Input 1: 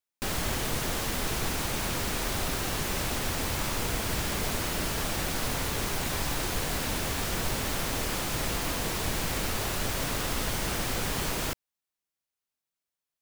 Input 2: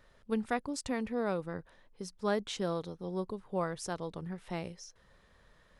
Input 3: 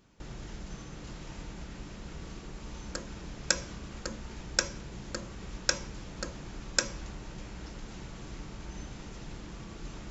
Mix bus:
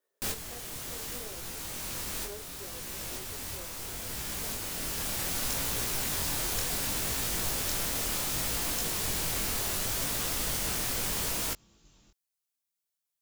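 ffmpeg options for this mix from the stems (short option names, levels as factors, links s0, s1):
-filter_complex "[0:a]highshelf=f=4400:g=11,volume=0.75[s0];[1:a]highpass=f=400:t=q:w=3.8,volume=0.106,asplit=2[s1][s2];[2:a]aexciter=amount=2.6:drive=6.3:freq=2900,adelay=2000,volume=0.133[s3];[s2]apad=whole_len=582833[s4];[s0][s4]sidechaincompress=threshold=0.002:ratio=3:attack=25:release=1420[s5];[s5][s1][s3]amix=inputs=3:normalize=0,flanger=delay=17.5:depth=8:speed=0.69"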